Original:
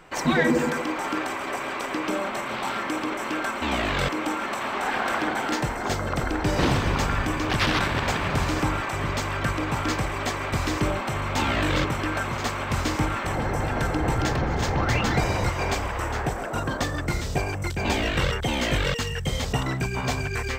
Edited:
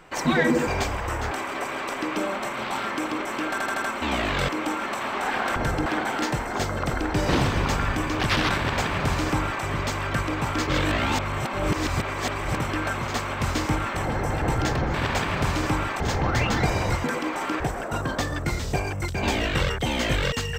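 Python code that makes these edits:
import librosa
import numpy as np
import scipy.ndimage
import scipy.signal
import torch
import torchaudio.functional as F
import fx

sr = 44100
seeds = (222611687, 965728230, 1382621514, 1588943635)

y = fx.edit(x, sr, fx.swap(start_s=0.67, length_s=0.56, other_s=15.58, other_length_s=0.64),
    fx.stutter(start_s=3.42, slice_s=0.08, count=5),
    fx.duplicate(start_s=7.87, length_s=1.06, to_s=14.54),
    fx.reverse_span(start_s=9.97, length_s=1.9),
    fx.move(start_s=13.72, length_s=0.3, to_s=5.16), tone=tone)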